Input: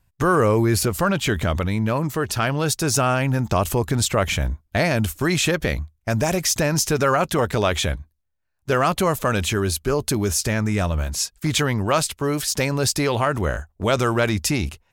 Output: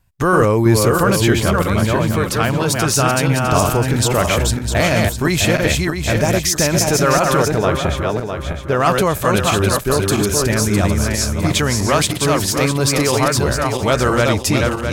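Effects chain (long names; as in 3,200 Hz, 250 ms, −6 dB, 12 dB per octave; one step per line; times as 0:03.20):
feedback delay that plays each chunk backwards 328 ms, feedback 56%, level −2.5 dB
0:07.48–0:08.80: high-shelf EQ 2,300 Hz −10 dB
level +3 dB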